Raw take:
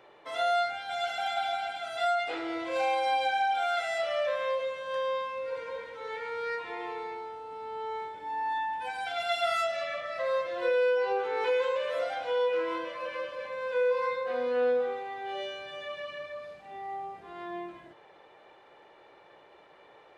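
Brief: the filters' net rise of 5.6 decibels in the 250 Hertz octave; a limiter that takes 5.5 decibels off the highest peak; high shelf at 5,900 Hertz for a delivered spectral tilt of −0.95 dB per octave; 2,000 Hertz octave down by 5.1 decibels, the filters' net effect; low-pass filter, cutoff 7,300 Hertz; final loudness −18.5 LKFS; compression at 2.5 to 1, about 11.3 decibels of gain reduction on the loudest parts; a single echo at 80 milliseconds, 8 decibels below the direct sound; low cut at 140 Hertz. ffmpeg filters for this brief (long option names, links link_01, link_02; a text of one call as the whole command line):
ffmpeg -i in.wav -af "highpass=140,lowpass=7300,equalizer=frequency=250:width_type=o:gain=9,equalizer=frequency=2000:width_type=o:gain=-6.5,highshelf=frequency=5900:gain=-5,acompressor=threshold=-40dB:ratio=2.5,alimiter=level_in=9dB:limit=-24dB:level=0:latency=1,volume=-9dB,aecho=1:1:80:0.398,volume=22dB" out.wav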